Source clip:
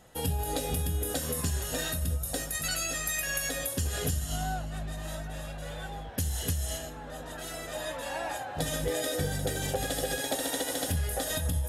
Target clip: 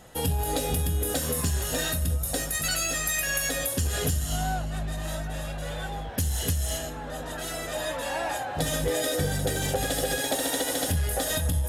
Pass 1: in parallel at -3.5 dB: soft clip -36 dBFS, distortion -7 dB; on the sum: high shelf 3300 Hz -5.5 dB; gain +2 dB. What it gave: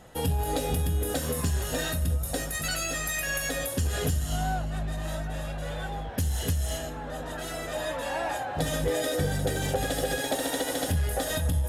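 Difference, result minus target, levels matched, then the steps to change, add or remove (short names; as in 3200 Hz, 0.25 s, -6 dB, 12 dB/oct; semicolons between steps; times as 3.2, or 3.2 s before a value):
8000 Hz band -3.0 dB
remove: high shelf 3300 Hz -5.5 dB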